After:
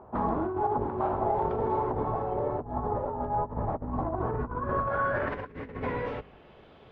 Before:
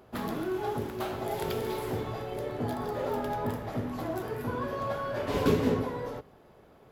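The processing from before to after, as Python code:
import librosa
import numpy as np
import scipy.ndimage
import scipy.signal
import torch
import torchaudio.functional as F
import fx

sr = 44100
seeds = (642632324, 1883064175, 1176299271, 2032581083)

y = fx.octave_divider(x, sr, octaves=2, level_db=-6.0)
y = fx.low_shelf(y, sr, hz=160.0, db=9.5, at=(2.61, 4.87))
y = fx.over_compress(y, sr, threshold_db=-32.0, ratio=-0.5)
y = fx.filter_sweep_lowpass(y, sr, from_hz=960.0, to_hz=3300.0, start_s=4.09, end_s=6.7, q=2.9)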